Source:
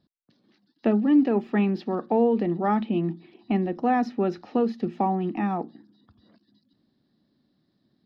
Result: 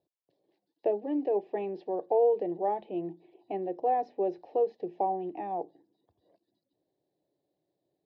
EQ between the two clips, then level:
resonant band-pass 560 Hz, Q 0.85
phaser with its sweep stopped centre 550 Hz, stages 4
0.0 dB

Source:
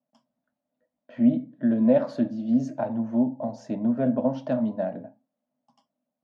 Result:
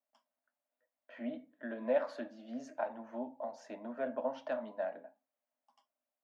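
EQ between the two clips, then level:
first difference
three-way crossover with the lows and the highs turned down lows −16 dB, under 250 Hz, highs −20 dB, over 2,300 Hz
+13.0 dB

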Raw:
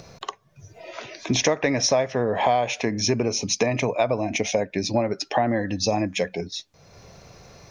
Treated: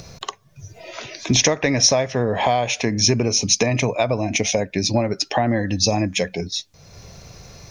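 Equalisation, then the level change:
low-shelf EQ 180 Hz +10 dB
high-shelf EQ 2,800 Hz +9.5 dB
0.0 dB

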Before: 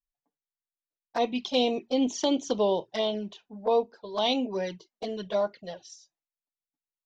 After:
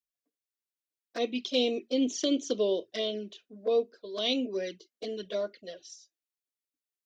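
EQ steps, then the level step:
high-pass filter 83 Hz 12 dB per octave
phaser with its sweep stopped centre 360 Hz, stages 4
0.0 dB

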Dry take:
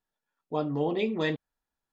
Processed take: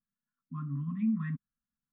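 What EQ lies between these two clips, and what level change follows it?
linear-phase brick-wall band-stop 270–1,000 Hz
low-pass filter 1,600 Hz 24 dB per octave
parametric band 200 Hz +12 dB 1.4 octaves
−7.0 dB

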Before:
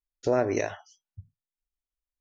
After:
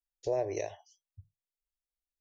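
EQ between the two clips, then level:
phaser with its sweep stopped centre 560 Hz, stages 4
−5.5 dB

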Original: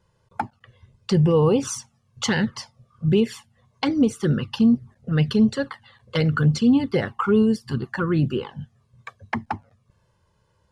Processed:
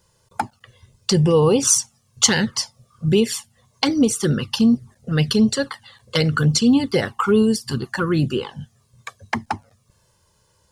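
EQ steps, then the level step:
bass and treble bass −5 dB, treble +14 dB
low-shelf EQ 160 Hz +4 dB
+3.0 dB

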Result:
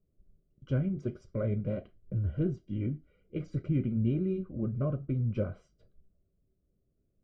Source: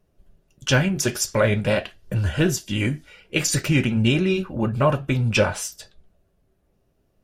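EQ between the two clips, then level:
moving average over 50 samples
high-frequency loss of the air 110 metres
−8.0 dB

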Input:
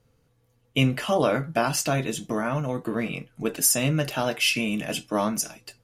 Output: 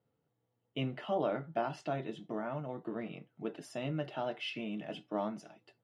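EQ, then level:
high-frequency loss of the air 400 metres
loudspeaker in its box 220–10,000 Hz, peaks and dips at 250 Hz −7 dB, 490 Hz −7 dB, 1,100 Hz −7 dB, 1,600 Hz −7 dB, 2,400 Hz −9 dB, 4,700 Hz −3 dB
−5.5 dB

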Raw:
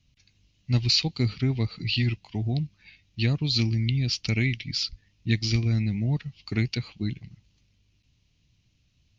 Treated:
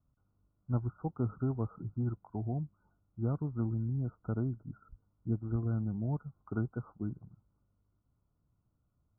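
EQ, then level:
linear-phase brick-wall low-pass 1,500 Hz
low-shelf EQ 370 Hz −10 dB
0.0 dB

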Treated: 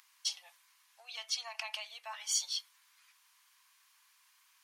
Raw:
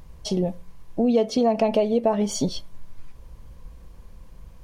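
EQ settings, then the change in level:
Bessel high-pass filter 1,900 Hz, order 8
0.0 dB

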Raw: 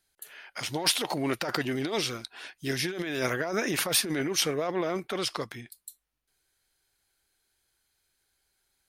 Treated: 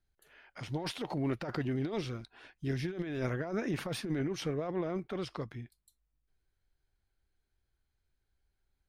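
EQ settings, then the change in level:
RIAA equalisation playback
−9.0 dB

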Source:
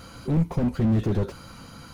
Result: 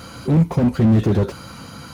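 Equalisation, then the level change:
high-pass filter 68 Hz
+7.5 dB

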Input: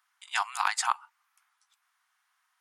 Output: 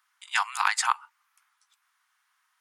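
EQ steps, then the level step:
high-pass filter 810 Hz 24 dB per octave
dynamic equaliser 2,000 Hz, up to +3 dB, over −38 dBFS, Q 1.5
+2.5 dB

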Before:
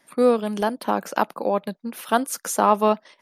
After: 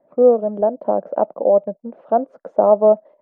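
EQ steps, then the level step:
low-pass with resonance 610 Hz, resonance Q 4.9
high-frequency loss of the air 51 metres
−2.0 dB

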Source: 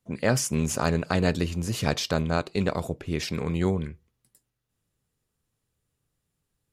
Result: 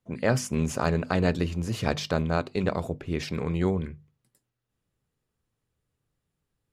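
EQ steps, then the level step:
high-shelf EQ 4,400 Hz −9 dB
mains-hum notches 50/100/150/200/250 Hz
0.0 dB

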